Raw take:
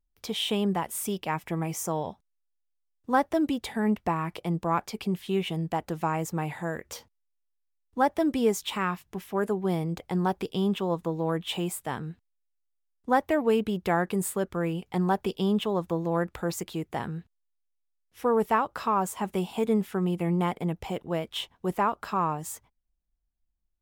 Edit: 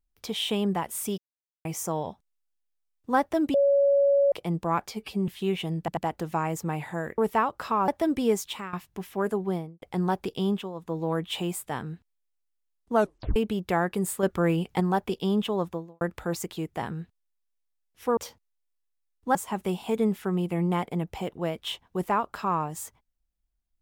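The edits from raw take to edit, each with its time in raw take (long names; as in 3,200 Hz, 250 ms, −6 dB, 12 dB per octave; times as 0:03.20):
0:01.18–0:01.65: silence
0:03.54–0:04.32: beep over 561 Hz −17.5 dBFS
0:04.89–0:05.15: time-stretch 1.5×
0:05.66: stutter 0.09 s, 3 plays
0:06.87–0:08.05: swap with 0:18.34–0:19.04
0:08.59–0:08.90: fade out, to −16 dB
0:09.59–0:09.99: fade out and dull
0:10.67–0:11.15: duck −12 dB, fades 0.24 s
0:13.09: tape stop 0.44 s
0:14.40–0:14.97: clip gain +5 dB
0:15.86–0:16.18: fade out quadratic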